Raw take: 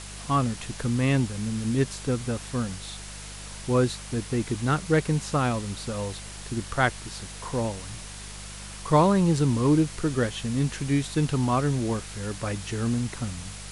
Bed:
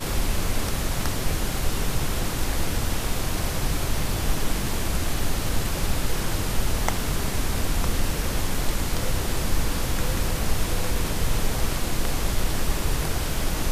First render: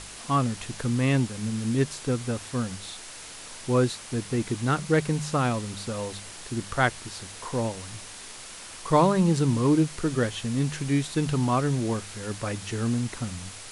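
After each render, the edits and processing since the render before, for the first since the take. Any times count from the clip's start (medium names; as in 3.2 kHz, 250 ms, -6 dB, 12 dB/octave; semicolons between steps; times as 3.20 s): de-hum 50 Hz, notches 4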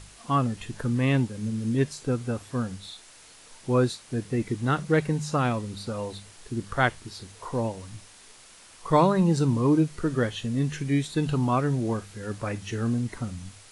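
noise print and reduce 9 dB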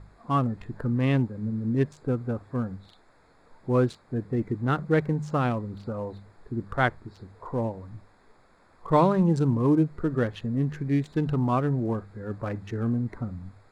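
local Wiener filter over 15 samples; treble shelf 4.2 kHz -8.5 dB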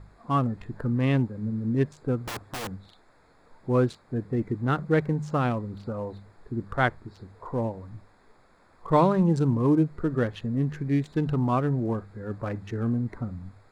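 2.22–2.69 s: integer overflow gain 28.5 dB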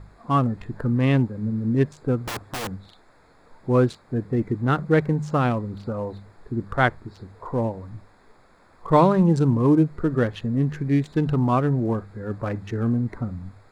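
trim +4 dB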